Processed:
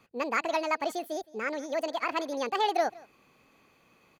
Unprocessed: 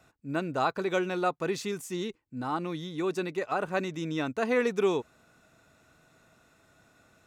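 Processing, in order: high shelf 3600 Hz -9.5 dB; echo 0.289 s -22.5 dB; speed mistake 45 rpm record played at 78 rpm

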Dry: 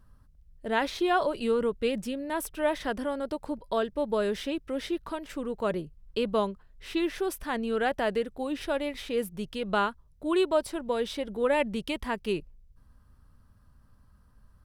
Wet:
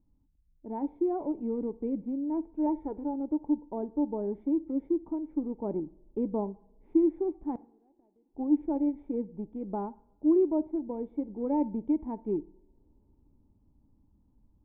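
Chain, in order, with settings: 2.66–3.14 comb 2.2 ms, depth 58%; in parallel at -9 dB: sample gate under -28 dBFS; on the sum: vocal tract filter u; 7.51–8.35 flipped gate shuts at -33 dBFS, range -36 dB; two-slope reverb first 0.6 s, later 4.5 s, from -27 dB, DRR 17.5 dB; vocal rider within 3 dB 2 s; gain +5 dB

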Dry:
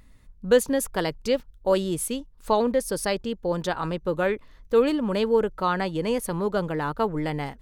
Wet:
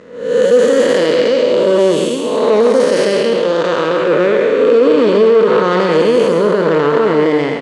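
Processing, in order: time blur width 0.405 s; 3.37–4.08 low shelf 390 Hz -8 dB; sample leveller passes 2; speaker cabinet 300–7000 Hz, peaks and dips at 470 Hz +5 dB, 800 Hz -9 dB, 4700 Hz -4 dB; echo 0.134 s -7.5 dB; maximiser +15.5 dB; mismatched tape noise reduction decoder only; gain -1 dB

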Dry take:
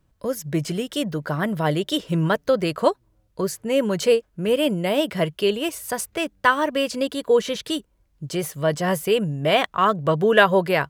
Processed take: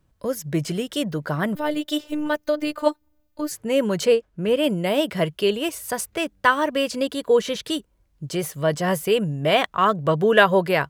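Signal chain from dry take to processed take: 1.55–3.51 robotiser 299 Hz; 4.05–4.64 high shelf 6400 Hz -8 dB

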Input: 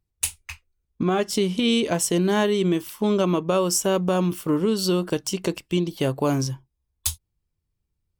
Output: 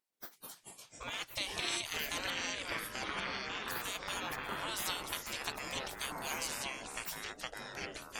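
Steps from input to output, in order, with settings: spectral gate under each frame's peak -25 dB weak; 2.3–3.68 air absorption 270 m; echoes that change speed 0.128 s, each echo -5 st, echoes 3

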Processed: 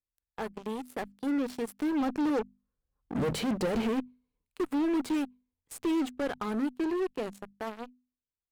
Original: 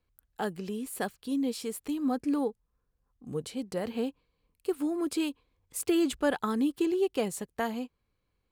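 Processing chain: Doppler pass-by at 3.43, 12 m/s, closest 3.6 m; in parallel at -7 dB: fuzz box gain 49 dB, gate -54 dBFS; on the sum: limiter -24.5 dBFS, peak gain reduction 9 dB; high shelf 3200 Hz -9.5 dB; notches 50/100/150/200/250 Hz

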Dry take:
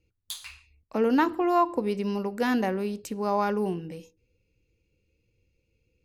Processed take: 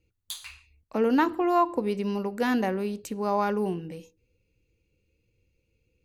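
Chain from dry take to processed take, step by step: notch 5200 Hz, Q 14

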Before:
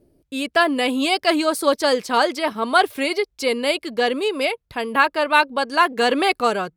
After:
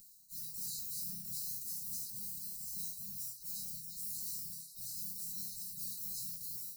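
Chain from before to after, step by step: sample sorter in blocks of 8 samples; spectral gate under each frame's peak -25 dB weak; HPF 160 Hz 6 dB/oct; spectral gate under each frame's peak -25 dB weak; upward compressor, threshold -53 dBFS; sample leveller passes 5; resonator bank C3 major, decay 0.37 s; delay with a stepping band-pass 0.35 s, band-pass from 1400 Hz, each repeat 1.4 oct, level -9 dB; transient shaper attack -4 dB, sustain +8 dB; brick-wall FIR band-stop 230–3800 Hz; gain +16.5 dB

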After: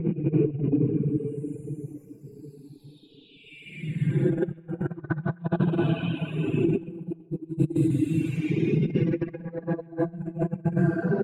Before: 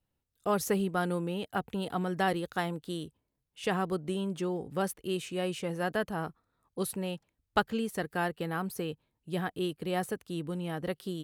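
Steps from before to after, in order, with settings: spectral delay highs early, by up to 0.341 s; pitch shift -1.5 st; reverb RT60 0.50 s, pre-delay 3 ms, DRR 0 dB; Paulstretch 8.8×, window 0.10 s, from 8.82; tilt -4.5 dB/oct; negative-ratio compressor -24 dBFS, ratio -0.5; delay with a stepping band-pass 0.129 s, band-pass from 2800 Hz, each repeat -0.7 oct, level -11 dB; reverb removal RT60 1.3 s; gain +1.5 dB

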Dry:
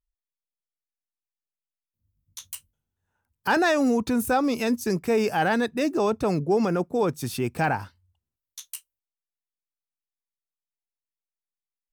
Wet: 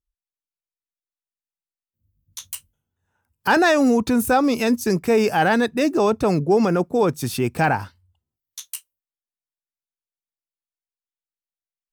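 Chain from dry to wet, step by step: spectral noise reduction 13 dB; gain +5 dB

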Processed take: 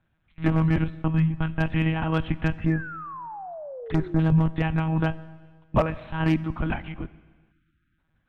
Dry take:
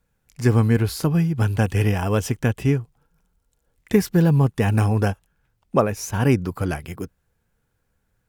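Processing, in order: 0.84–1.61 gate -21 dBFS, range -20 dB; monotone LPC vocoder at 8 kHz 160 Hz; bell 430 Hz -11 dB 0.58 oct; one-sided clip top -11 dBFS; 2.54–4.19 envelope phaser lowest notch 370 Hz, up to 3000 Hz, full sweep at -24.5 dBFS; 2.7–4.2 painted sound fall 310–1800 Hz -37 dBFS; Schroeder reverb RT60 1.6 s, combs from 29 ms, DRR 17 dB; 7.52–7.98 spectral delete 360–1200 Hz

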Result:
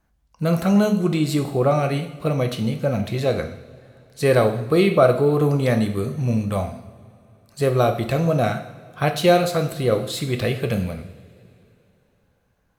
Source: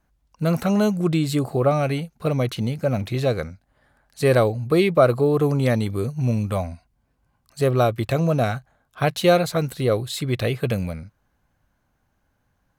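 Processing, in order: two-slope reverb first 0.7 s, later 3.2 s, from -18 dB, DRR 5.5 dB

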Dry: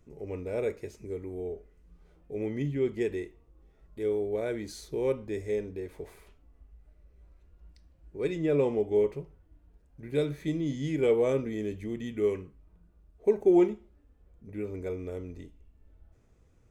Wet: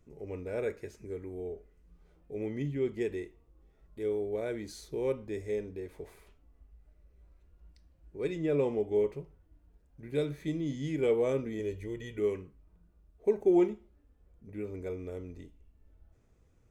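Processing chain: 0.46–1.29 bell 1600 Hz +7.5 dB 0.38 oct; 11.59–12.19 comb 2.1 ms, depth 69%; gain -3 dB

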